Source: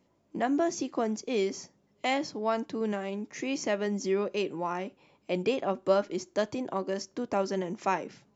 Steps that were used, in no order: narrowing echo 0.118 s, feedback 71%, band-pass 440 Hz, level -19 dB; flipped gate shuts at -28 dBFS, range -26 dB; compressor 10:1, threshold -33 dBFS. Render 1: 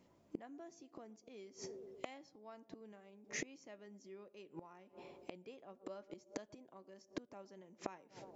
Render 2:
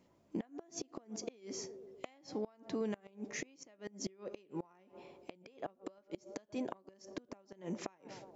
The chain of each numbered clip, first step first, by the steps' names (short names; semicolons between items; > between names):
narrowing echo > flipped gate > compressor; narrowing echo > compressor > flipped gate